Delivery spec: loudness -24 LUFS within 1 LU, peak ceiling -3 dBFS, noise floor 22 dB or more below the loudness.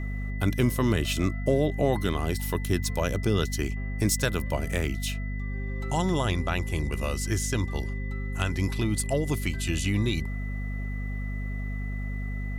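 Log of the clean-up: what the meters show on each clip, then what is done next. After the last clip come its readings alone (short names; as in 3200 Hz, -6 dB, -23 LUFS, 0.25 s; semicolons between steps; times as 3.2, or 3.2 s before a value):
hum 50 Hz; harmonics up to 250 Hz; hum level -29 dBFS; steady tone 2000 Hz; tone level -42 dBFS; loudness -28.5 LUFS; peak -10.5 dBFS; loudness target -24.0 LUFS
-> de-hum 50 Hz, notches 5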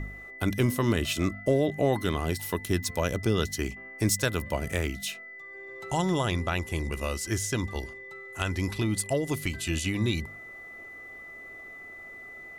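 hum none; steady tone 2000 Hz; tone level -42 dBFS
-> notch 2000 Hz, Q 30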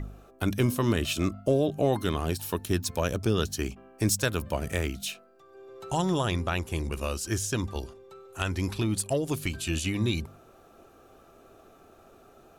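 steady tone none; loudness -29.0 LUFS; peak -11.0 dBFS; loudness target -24.0 LUFS
-> gain +5 dB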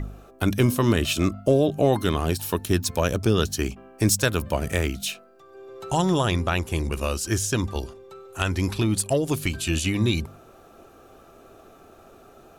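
loudness -24.0 LUFS; peak -6.0 dBFS; noise floor -51 dBFS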